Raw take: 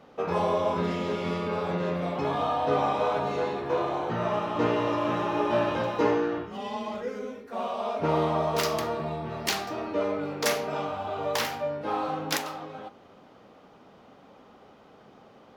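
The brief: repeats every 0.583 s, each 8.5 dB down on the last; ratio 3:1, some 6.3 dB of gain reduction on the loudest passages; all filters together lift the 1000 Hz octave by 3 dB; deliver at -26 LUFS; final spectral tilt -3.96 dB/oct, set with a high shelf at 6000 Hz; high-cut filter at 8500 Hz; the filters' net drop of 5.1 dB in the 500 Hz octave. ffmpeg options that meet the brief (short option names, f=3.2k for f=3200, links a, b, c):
-af "lowpass=8.5k,equalizer=f=500:t=o:g=-8.5,equalizer=f=1k:t=o:g=6.5,highshelf=f=6k:g=-3.5,acompressor=threshold=-30dB:ratio=3,aecho=1:1:583|1166|1749|2332:0.376|0.143|0.0543|0.0206,volume=6.5dB"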